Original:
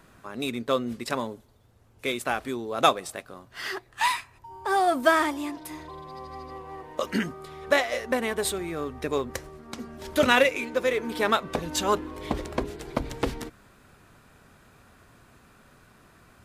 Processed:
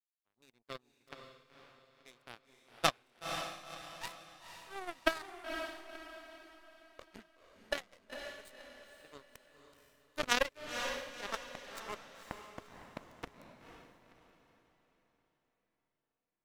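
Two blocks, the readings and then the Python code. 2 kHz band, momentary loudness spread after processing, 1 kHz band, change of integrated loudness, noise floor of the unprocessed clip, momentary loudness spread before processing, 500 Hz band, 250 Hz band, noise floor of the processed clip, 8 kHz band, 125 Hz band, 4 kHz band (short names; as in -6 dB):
-12.5 dB, 23 LU, -15.5 dB, -13.0 dB, -57 dBFS, 19 LU, -16.5 dB, -19.5 dB, under -85 dBFS, -11.0 dB, -17.0 dB, -9.5 dB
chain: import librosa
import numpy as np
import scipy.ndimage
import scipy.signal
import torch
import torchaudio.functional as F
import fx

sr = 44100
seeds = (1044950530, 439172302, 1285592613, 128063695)

y = np.where(x < 0.0, 10.0 ** (-3.0 / 20.0) * x, x)
y = fx.power_curve(y, sr, exponent=3.0)
y = fx.echo_diffused(y, sr, ms=506, feedback_pct=41, wet_db=-6)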